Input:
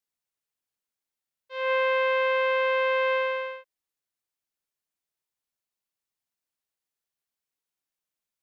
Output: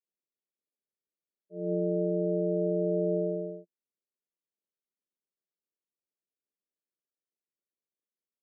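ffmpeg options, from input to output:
-filter_complex "[0:a]asplit=2[a][b];[b]asetrate=22050,aresample=44100,atempo=2,volume=-1dB[c];[a][c]amix=inputs=2:normalize=0,asuperpass=centerf=370:order=12:qfactor=1.3,aeval=exprs='val(0)*sin(2*PI*84*n/s)':c=same"

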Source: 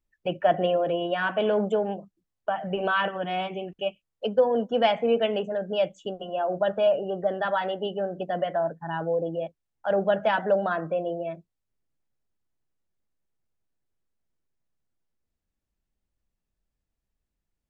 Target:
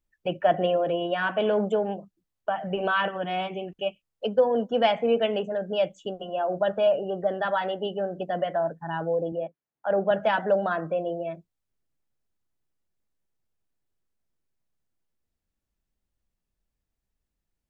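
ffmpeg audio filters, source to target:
-filter_complex "[0:a]asettb=1/sr,asplit=3[a][b][c];[a]atrim=end=9.324[d];[b]atrim=start=9.32:end=10.11,asetpts=PTS-STARTPTS,afade=t=in:d=0.004:c=qsin,afade=t=out:st=0.786:d=0.004:c=qsin,highpass=160,lowpass=2.1k[e];[c]atrim=start=10.106[f];[d][e]acrossfade=d=0.004:c1=hsin:c2=qsin[g];[g][f]acrossfade=d=0.004:c1=qsin:c2=hsin"

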